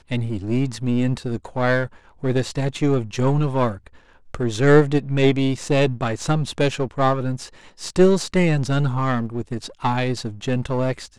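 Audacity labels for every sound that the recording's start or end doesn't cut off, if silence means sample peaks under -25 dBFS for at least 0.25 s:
2.230000	3.750000	sound
4.340000	7.450000	sound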